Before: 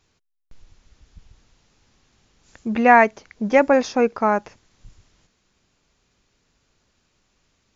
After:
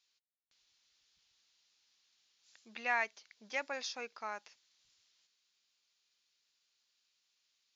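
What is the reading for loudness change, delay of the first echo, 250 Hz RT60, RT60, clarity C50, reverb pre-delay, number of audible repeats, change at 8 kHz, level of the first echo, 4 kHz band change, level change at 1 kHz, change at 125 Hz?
-20.0 dB, none, none, none, none, none, none, n/a, none, -6.5 dB, -23.0 dB, n/a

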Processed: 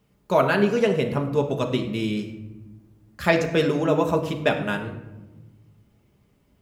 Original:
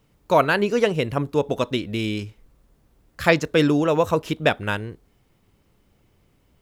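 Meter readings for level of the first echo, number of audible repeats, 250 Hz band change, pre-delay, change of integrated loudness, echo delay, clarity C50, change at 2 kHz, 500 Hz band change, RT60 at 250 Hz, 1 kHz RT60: none, none, -1.0 dB, 5 ms, -1.5 dB, none, 9.0 dB, -2.5 dB, -1.0 dB, 1.9 s, 1.0 s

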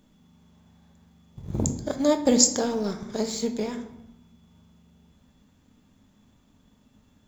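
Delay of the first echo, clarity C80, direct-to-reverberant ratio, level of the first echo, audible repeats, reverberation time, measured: none, 13.5 dB, 6.0 dB, none, none, 0.85 s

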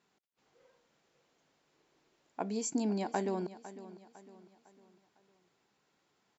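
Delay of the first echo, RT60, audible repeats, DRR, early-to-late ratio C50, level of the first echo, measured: 0.504 s, none, 3, none, none, -15.5 dB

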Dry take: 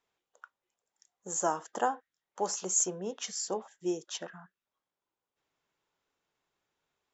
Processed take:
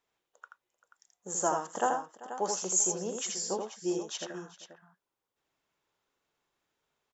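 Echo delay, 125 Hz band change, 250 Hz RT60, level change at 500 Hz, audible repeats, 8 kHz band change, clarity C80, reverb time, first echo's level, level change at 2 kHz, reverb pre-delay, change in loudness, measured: 81 ms, +2.0 dB, none, +1.5 dB, 3, n/a, none, none, -4.5 dB, +1.5 dB, none, +1.5 dB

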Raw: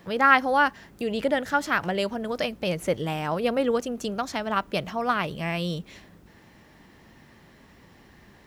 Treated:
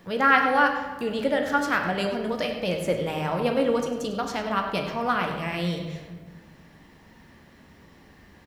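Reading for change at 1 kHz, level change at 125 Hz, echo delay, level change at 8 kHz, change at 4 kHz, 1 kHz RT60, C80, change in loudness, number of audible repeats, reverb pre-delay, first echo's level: 0.0 dB, +1.0 dB, 0.1 s, -0.5 dB, 0.0 dB, 1.3 s, 6.5 dB, +0.5 dB, 1, 3 ms, -12.5 dB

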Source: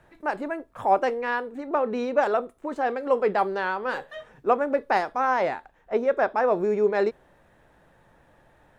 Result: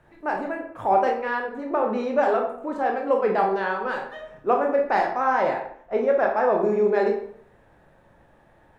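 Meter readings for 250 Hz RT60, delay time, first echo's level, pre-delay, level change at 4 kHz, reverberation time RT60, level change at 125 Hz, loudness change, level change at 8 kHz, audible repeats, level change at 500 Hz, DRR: 0.65 s, none, none, 18 ms, -1.5 dB, 0.60 s, n/a, +2.0 dB, n/a, none, +2.0 dB, 1.0 dB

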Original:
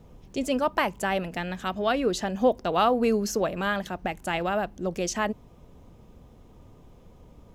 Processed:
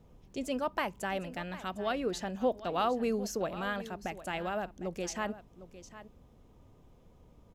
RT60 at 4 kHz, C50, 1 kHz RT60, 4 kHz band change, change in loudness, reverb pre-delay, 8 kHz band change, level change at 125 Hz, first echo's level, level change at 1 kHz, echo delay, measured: none, none, none, -8.0 dB, -8.0 dB, none, -8.0 dB, -8.0 dB, -15.0 dB, -8.0 dB, 0.755 s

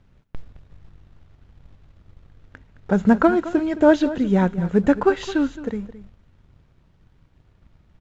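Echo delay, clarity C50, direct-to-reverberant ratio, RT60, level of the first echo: 0.216 s, none, none, none, -15.0 dB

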